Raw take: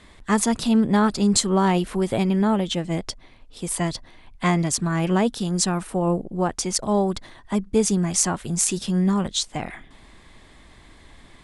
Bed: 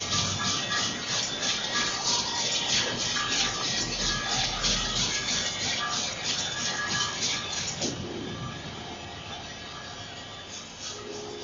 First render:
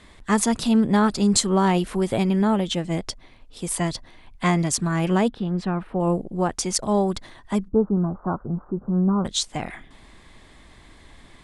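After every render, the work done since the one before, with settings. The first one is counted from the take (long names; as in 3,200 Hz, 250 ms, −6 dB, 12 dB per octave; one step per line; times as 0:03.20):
0:05.28–0:06.00: high-frequency loss of the air 430 metres
0:07.68–0:09.25: Butterworth low-pass 1,400 Hz 72 dB per octave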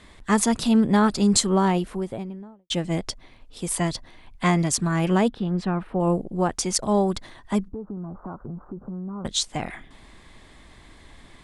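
0:01.37–0:02.70: fade out and dull
0:07.71–0:09.25: downward compressor, threshold −31 dBFS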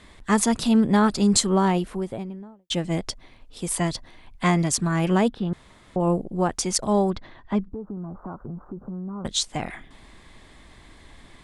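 0:05.53–0:05.96: fill with room tone
0:07.10–0:07.72: high-frequency loss of the air 220 metres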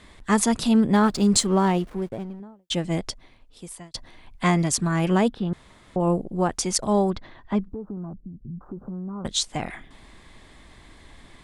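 0:00.94–0:02.40: slack as between gear wheels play −37 dBFS
0:03.00–0:03.94: fade out
0:08.13–0:08.61: inverse Chebyshev low-pass filter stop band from 1,100 Hz, stop band 70 dB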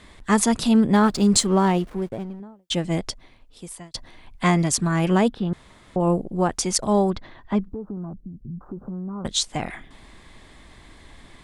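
level +1.5 dB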